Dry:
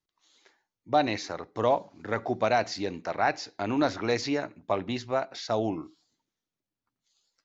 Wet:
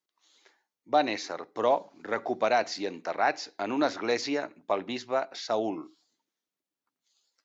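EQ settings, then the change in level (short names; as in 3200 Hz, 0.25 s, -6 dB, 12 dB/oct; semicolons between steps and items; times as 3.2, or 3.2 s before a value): HPF 260 Hz 12 dB/oct; 0.0 dB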